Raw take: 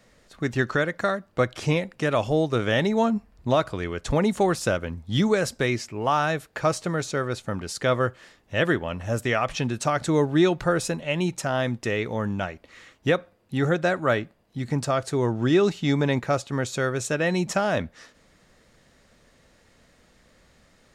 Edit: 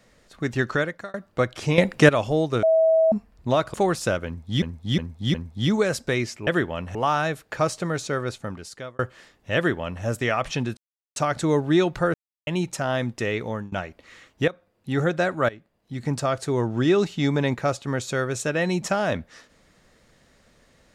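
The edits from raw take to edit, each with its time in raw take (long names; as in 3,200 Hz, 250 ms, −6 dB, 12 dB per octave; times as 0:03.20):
0:00.81–0:01.14: fade out
0:01.78–0:02.09: clip gain +11 dB
0:02.63–0:03.12: beep over 646 Hz −14.5 dBFS
0:03.74–0:04.34: remove
0:04.86–0:05.22: repeat, 4 plays
0:07.31–0:08.03: fade out
0:08.60–0:09.08: duplicate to 0:05.99
0:09.81: splice in silence 0.39 s
0:10.79–0:11.12: silence
0:12.05–0:12.37: fade out equal-power, to −23 dB
0:13.13–0:13.63: fade in, from −14.5 dB
0:14.14–0:14.76: fade in, from −18.5 dB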